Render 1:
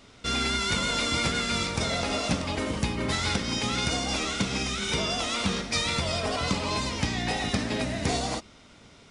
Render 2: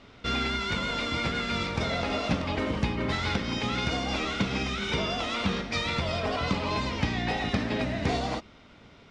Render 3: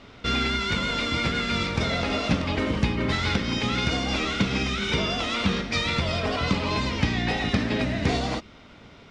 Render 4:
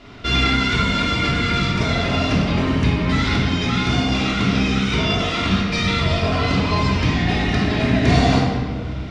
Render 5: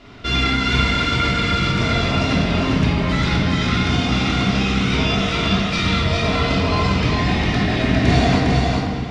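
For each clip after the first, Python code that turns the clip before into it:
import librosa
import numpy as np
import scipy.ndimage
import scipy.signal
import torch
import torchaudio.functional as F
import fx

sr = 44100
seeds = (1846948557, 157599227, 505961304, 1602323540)

y1 = scipy.signal.sosfilt(scipy.signal.butter(2, 3500.0, 'lowpass', fs=sr, output='sos'), x)
y1 = fx.rider(y1, sr, range_db=10, speed_s=0.5)
y2 = fx.dynamic_eq(y1, sr, hz=780.0, q=1.1, threshold_db=-43.0, ratio=4.0, max_db=-4)
y2 = F.gain(torch.from_numpy(y2), 4.5).numpy()
y3 = fx.room_shoebox(y2, sr, seeds[0], volume_m3=1300.0, walls='mixed', distance_m=3.1)
y3 = fx.rider(y3, sr, range_db=10, speed_s=2.0)
y3 = F.gain(torch.from_numpy(y3), -1.0).numpy()
y4 = fx.echo_feedback(y3, sr, ms=404, feedback_pct=18, wet_db=-3)
y4 = F.gain(torch.from_numpy(y4), -1.0).numpy()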